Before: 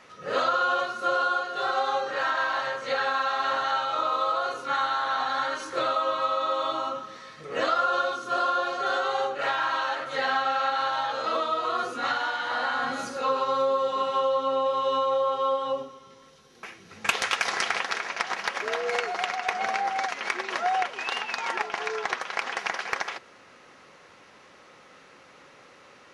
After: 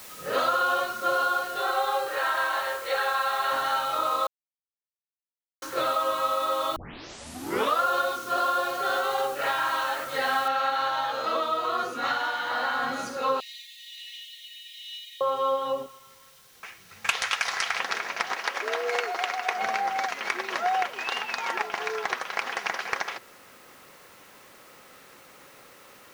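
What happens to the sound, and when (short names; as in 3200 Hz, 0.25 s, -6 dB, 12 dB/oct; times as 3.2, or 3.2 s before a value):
1.61–3.52 brick-wall FIR band-pass 310–4600 Hz
4.27–5.62 mute
6.76 tape start 1.05 s
10.48 noise floor step -45 dB -57 dB
13.4–15.21 brick-wall FIR high-pass 1700 Hz
15.86–17.79 bell 290 Hz -13 dB 1.8 oct
18.33–19.58 HPF 260 Hz 24 dB/oct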